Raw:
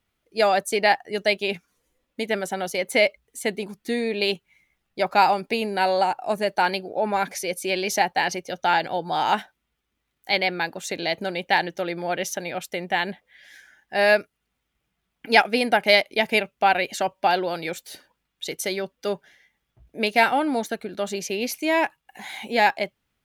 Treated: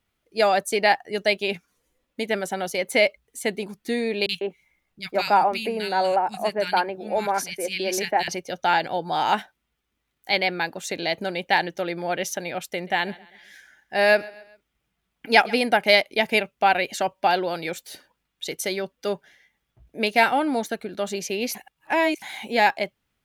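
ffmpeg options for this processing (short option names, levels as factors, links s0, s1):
-filter_complex "[0:a]asettb=1/sr,asplit=3[s0][s1][s2];[s0]atrim=end=4.264[s3];[s1]atrim=start=4.26:end=8.28,asetpts=PTS-STARTPTS,afade=t=in:d=0.004:c=qsin,afade=t=out:st=4.016:d=0.004:c=qsin,acrossover=split=200|1900[s4][s5][s6];[s6]adelay=30[s7];[s5]adelay=150[s8];[s4][s8][s7]amix=inputs=3:normalize=0,atrim=end_sample=177282[s9];[s2]atrim=start=8.276[s10];[s3][s9]acrossfade=d=0.004:c1=hsin:c2=qsin[s11];[s11][s10]acrossfade=d=0.004:c1=qsin:c2=hsin,asettb=1/sr,asplit=3[s12][s13][s14];[s12]atrim=end=12.654[s15];[s13]atrim=start=12.65:end=15.64,asetpts=PTS-STARTPTS,afade=t=in:d=0.004:c=qsin,afade=t=out:st=2.986:d=0.004:c=qsin,aecho=1:1:132|264|396:0.0841|0.037|0.0163,atrim=end_sample=131859[s16];[s14]atrim=start=15.636[s17];[s15][s16]acrossfade=d=0.004:c1=hsin:c2=qsin[s18];[s18][s17]acrossfade=d=0.004:c1=qsin:c2=hsin,asplit=3[s19][s20][s21];[s19]atrim=end=21.552[s22];[s20]atrim=start=21.548:end=22.222,asetpts=PTS-STARTPTS,areverse[s23];[s21]atrim=start=22.218[s24];[s22][s23]acrossfade=d=0.004:c1=hsin:c2=hsin[s25];[s25][s24]acrossfade=d=0.004:c1=hsin:c2=hsin"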